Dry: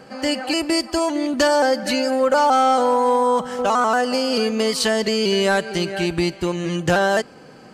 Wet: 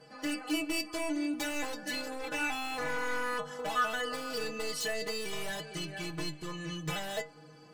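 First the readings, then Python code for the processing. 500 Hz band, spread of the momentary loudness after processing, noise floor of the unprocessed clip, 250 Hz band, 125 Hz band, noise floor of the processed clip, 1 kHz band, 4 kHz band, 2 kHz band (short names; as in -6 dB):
-19.5 dB, 7 LU, -44 dBFS, -15.0 dB, -14.5 dB, -54 dBFS, -18.5 dB, -13.0 dB, -10.5 dB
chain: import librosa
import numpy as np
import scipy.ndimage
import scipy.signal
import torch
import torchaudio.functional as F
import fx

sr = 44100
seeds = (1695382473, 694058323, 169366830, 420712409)

y = 10.0 ** (-16.0 / 20.0) * (np.abs((x / 10.0 ** (-16.0 / 20.0) + 3.0) % 4.0 - 2.0) - 1.0)
y = fx.stiff_resonator(y, sr, f0_hz=150.0, decay_s=0.28, stiffness=0.008)
y = fx.dynamic_eq(y, sr, hz=4700.0, q=3.2, threshold_db=-49.0, ratio=4.0, max_db=-5)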